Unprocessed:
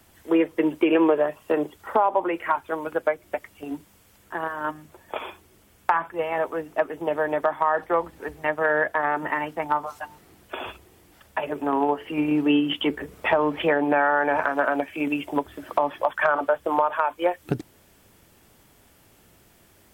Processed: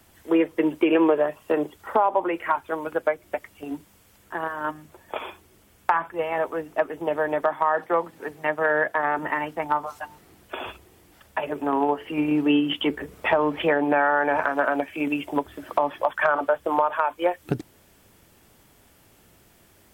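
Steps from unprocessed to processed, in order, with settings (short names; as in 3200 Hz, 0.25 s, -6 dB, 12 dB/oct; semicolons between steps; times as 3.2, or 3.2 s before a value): 7.43–9.19 HPF 110 Hz 24 dB/oct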